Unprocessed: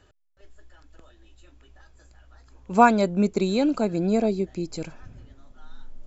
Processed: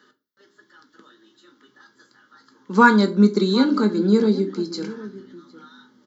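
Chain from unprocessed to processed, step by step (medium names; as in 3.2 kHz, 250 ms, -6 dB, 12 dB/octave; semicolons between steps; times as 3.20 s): high-pass 220 Hz 24 dB/octave; static phaser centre 2.5 kHz, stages 6; echo from a far wall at 130 m, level -17 dB; reverberation RT60 0.30 s, pre-delay 5 ms, DRR 5 dB; trim +8 dB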